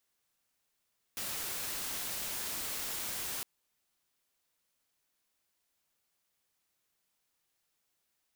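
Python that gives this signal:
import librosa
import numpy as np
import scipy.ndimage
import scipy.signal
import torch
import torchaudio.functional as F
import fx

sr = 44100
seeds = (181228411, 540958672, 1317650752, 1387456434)

y = fx.noise_colour(sr, seeds[0], length_s=2.26, colour='white', level_db=-38.0)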